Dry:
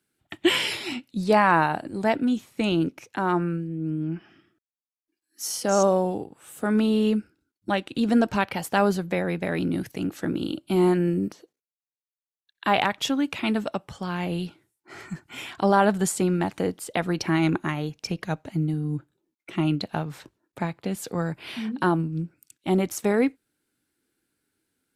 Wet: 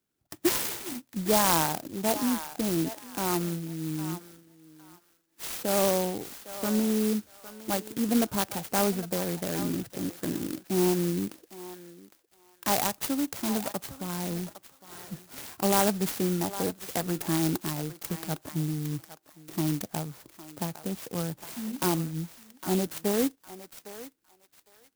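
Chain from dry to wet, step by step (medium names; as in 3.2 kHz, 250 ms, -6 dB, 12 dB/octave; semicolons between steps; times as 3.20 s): on a send: thinning echo 808 ms, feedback 28%, high-pass 1.1 kHz, level -8 dB; on the sum: sampling jitter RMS 0.13 ms; trim -4.5 dB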